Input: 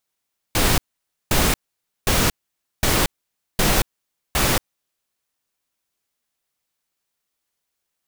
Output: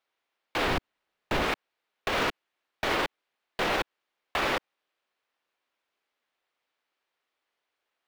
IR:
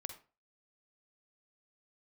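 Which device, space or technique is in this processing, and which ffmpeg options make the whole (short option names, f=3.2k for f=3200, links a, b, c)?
DJ mixer with the lows and highs turned down: -filter_complex "[0:a]asettb=1/sr,asplit=3[a][b][c];[a]atrim=end=0.664[d];[b]atrim=start=0.66:end=1.43,asetpts=PTS-STARTPTS,afade=t=in:d=0.004:c=qsin,afade=t=out:st=0.766:d=0.004:c=qsin,lowshelf=f=280:g=10[e];[c]atrim=start=1.426[f];[d][e]acrossfade=d=0.004:c1=hsin:c2=qsin[g];[g][f]acrossfade=d=0.004:c1=qsin:c2=hsin,acrossover=split=300 3700:gain=0.141 1 0.0794[h][i][j];[h][i][j]amix=inputs=3:normalize=0,alimiter=limit=-22dB:level=0:latency=1:release=72,volume=4dB"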